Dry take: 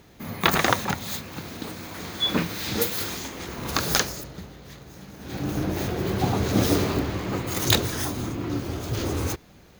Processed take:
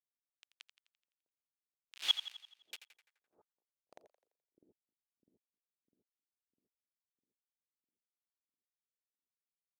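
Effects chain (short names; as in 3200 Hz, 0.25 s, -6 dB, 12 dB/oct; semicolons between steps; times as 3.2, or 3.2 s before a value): Doppler pass-by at 2.07, 19 m/s, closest 1.1 m; tone controls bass -14 dB, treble +9 dB; in parallel at -8.5 dB: sample-rate reducer 2100 Hz, jitter 0%; on the sum: flipped gate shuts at -15 dBFS, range -26 dB; bit-crush 5-bit; on a send: split-band echo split 550 Hz, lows 0.652 s, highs 85 ms, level -11.5 dB; on the sum: band-pass sweep 2900 Hz -> 250 Hz, 2.76–4.8; gain +2.5 dB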